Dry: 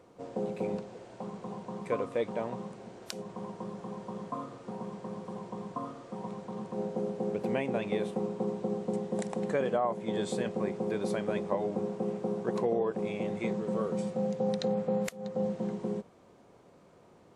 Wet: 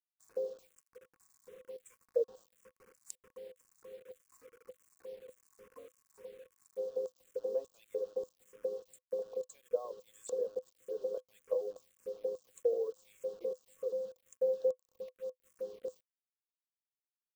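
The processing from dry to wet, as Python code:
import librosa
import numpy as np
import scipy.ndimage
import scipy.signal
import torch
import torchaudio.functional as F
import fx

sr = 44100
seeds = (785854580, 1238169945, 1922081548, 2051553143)

y = fx.dereverb_blind(x, sr, rt60_s=0.72)
y = fx.riaa(y, sr, side='recording')
y = fx.filter_lfo_bandpass(y, sr, shape='square', hz=1.7, low_hz=470.0, high_hz=7400.0, q=6.4)
y = fx.quant_dither(y, sr, seeds[0], bits=10, dither='none')
y = fx.small_body(y, sr, hz=(510.0, 1100.0), ring_ms=80, db=13)
y = fx.env_phaser(y, sr, low_hz=460.0, high_hz=2200.0, full_db=-37.0)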